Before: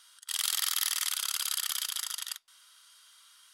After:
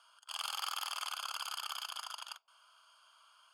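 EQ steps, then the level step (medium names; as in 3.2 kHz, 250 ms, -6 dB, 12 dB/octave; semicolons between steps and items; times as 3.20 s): boxcar filter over 23 samples; high-pass 570 Hz 24 dB/octave; +10.0 dB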